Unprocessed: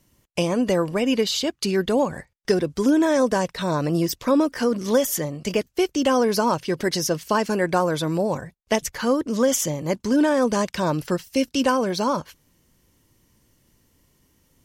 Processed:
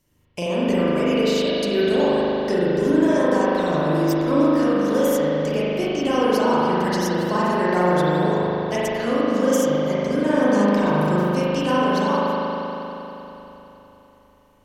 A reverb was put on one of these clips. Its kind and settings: spring tank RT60 3.6 s, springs 39 ms, chirp 55 ms, DRR -9 dB; gain -7 dB

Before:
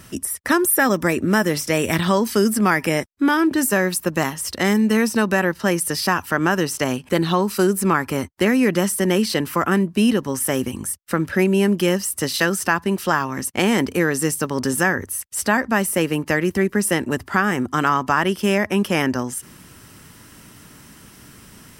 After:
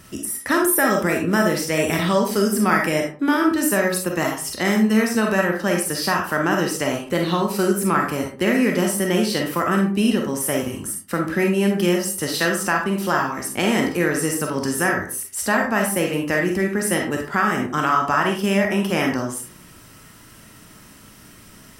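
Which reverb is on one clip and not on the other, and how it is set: digital reverb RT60 0.41 s, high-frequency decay 0.55×, pre-delay 5 ms, DRR 0.5 dB; gain -3 dB

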